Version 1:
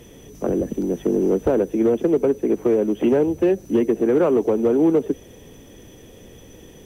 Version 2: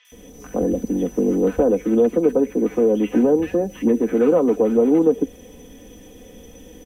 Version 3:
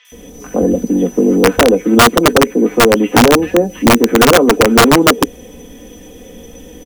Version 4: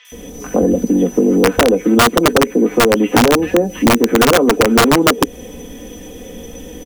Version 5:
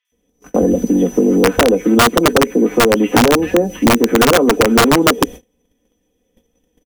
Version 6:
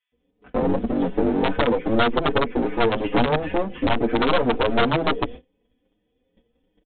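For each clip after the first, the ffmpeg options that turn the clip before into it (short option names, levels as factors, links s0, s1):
-filter_complex "[0:a]aecho=1:1:4:0.65,acrossover=split=1300|4300[s0][s1][s2];[s2]adelay=50[s3];[s0]adelay=120[s4];[s4][s1][s3]amix=inputs=3:normalize=0"
-filter_complex "[0:a]bandreject=f=50:t=h:w=6,bandreject=f=100:t=h:w=6,asplit=2[s0][s1];[s1]adelay=17,volume=0.251[s2];[s0][s2]amix=inputs=2:normalize=0,aeval=exprs='(mod(2.82*val(0)+1,2)-1)/2.82':c=same,volume=2.37"
-af "acompressor=threshold=0.2:ratio=2.5,volume=1.41"
-af "agate=range=0.0224:threshold=0.0501:ratio=16:detection=peak"
-filter_complex "[0:a]aresample=8000,aeval=exprs='clip(val(0),-1,0.0841)':c=same,aresample=44100,asplit=2[s0][s1];[s1]adelay=6.7,afreqshift=2.5[s2];[s0][s2]amix=inputs=2:normalize=1,volume=0.794"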